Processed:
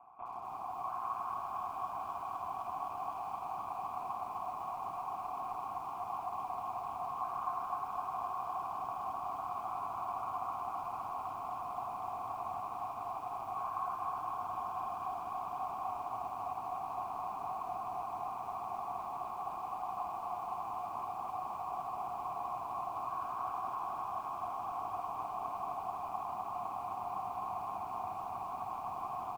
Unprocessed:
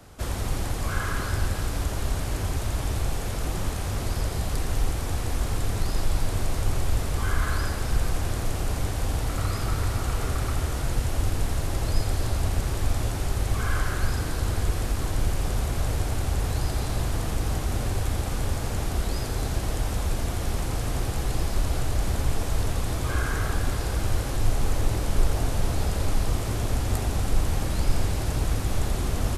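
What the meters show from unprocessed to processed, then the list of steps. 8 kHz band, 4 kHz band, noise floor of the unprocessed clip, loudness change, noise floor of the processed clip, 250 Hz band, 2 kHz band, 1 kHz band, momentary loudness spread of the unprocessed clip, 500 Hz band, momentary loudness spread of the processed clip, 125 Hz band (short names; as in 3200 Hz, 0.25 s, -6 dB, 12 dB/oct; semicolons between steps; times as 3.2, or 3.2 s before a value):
under -25 dB, under -25 dB, -30 dBFS, -11.0 dB, -43 dBFS, -22.5 dB, -21.5 dB, +1.5 dB, 2 LU, -11.5 dB, 2 LU, -33.0 dB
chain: HPF 150 Hz 12 dB/oct; tilt +2.5 dB/oct; limiter -24 dBFS, peak gain reduction 15 dB; fixed phaser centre 2700 Hz, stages 8; AM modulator 120 Hz, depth 55%; vocal tract filter a; air absorption 55 m; echo 0.983 s -10 dB; lo-fi delay 0.256 s, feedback 80%, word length 13-bit, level -4 dB; gain +14.5 dB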